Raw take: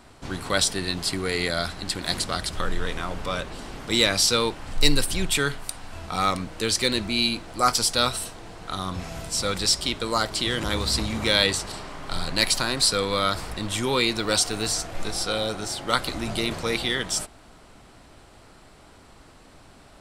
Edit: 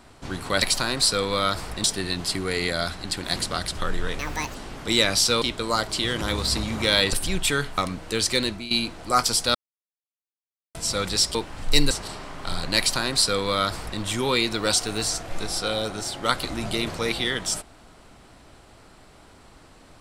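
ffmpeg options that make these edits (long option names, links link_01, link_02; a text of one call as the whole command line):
ffmpeg -i in.wav -filter_complex "[0:a]asplit=13[link_01][link_02][link_03][link_04][link_05][link_06][link_07][link_08][link_09][link_10][link_11][link_12][link_13];[link_01]atrim=end=0.622[link_14];[link_02]atrim=start=12.418:end=13.642[link_15];[link_03]atrim=start=0.618:end=2.974[link_16];[link_04]atrim=start=2.97:end=3.57,asetpts=PTS-STARTPTS,asetrate=74088,aresample=44100[link_17];[link_05]atrim=start=3.566:end=4.442[link_18];[link_06]atrim=start=9.838:end=11.552[link_19];[link_07]atrim=start=4.998:end=5.652[link_20];[link_08]atrim=start=6.268:end=7.2,asetpts=PTS-STARTPTS,afade=type=out:start_time=0.652:duration=0.28:silence=0.16788[link_21];[link_09]atrim=start=7.2:end=8.04,asetpts=PTS-STARTPTS,afade=type=in:duration=0.004:curve=hsin:silence=0.16788,afade=type=out:start_time=0.836:duration=0.004:curve=hsin[link_22];[link_10]atrim=start=8.04:end=9.24,asetpts=PTS-STARTPTS,volume=0[link_23];[link_11]atrim=start=9.24:end=9.842,asetpts=PTS-STARTPTS,afade=type=in:duration=0.004:curve=hsin[link_24];[link_12]atrim=start=4.438:end=5.002[link_25];[link_13]atrim=start=11.548[link_26];[link_14][link_15]acrossfade=duration=0.004:curve1=hsin:curve2=hsin[link_27];[link_27][link_16]acrossfade=duration=0.004:curve1=hsin:curve2=hsin[link_28];[link_28][link_17]acrossfade=duration=0.004:curve1=hsin:curve2=hsin[link_29];[link_29][link_18]acrossfade=duration=0.004:curve1=hsin:curve2=hsin[link_30];[link_30][link_19]acrossfade=duration=0.004:curve1=hsin:curve2=hsin[link_31];[link_31][link_20]acrossfade=duration=0.004:curve1=hsin:curve2=hsin[link_32];[link_21][link_22][link_23][link_24]concat=n=4:v=0:a=1[link_33];[link_32][link_33]acrossfade=duration=0.004:curve1=hsin:curve2=hsin[link_34];[link_34][link_25]acrossfade=duration=0.004:curve1=hsin:curve2=hsin[link_35];[link_35][link_26]acrossfade=duration=0.004:curve1=hsin:curve2=hsin" out.wav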